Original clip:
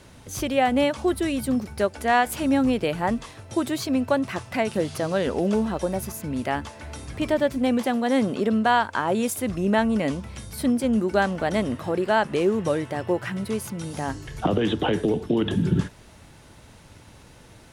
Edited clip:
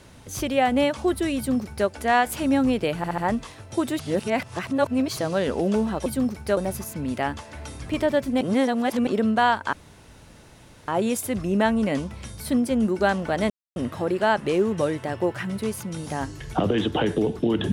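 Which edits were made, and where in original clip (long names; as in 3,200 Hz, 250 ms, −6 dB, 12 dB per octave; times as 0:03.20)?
0:01.37–0:01.88: duplicate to 0:05.85
0:02.97: stutter 0.07 s, 4 plays
0:03.78–0:04.96: reverse
0:07.69–0:08.35: reverse
0:09.01: splice in room tone 1.15 s
0:11.63: splice in silence 0.26 s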